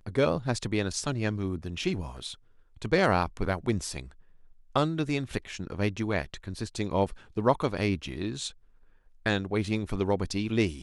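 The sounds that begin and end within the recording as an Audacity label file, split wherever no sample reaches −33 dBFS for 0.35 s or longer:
2.820000	4.010000	sound
4.760000	8.480000	sound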